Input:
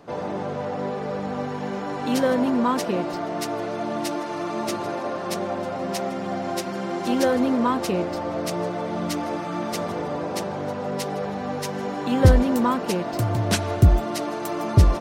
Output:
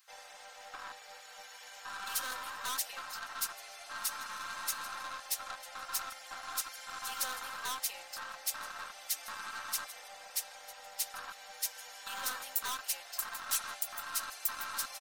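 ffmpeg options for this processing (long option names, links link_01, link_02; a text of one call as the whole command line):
ffmpeg -i in.wav -af "afwtdn=0.0631,highpass=frequency=1300:width=0.5412,highpass=frequency=1300:width=1.3066,highshelf=frequency=10000:gain=7.5,aecho=1:1:3.8:0.65,aeval=exprs='(tanh(100*val(0)+0.35)-tanh(0.35))/100':channel_layout=same,crystalizer=i=5.5:c=0" out.wav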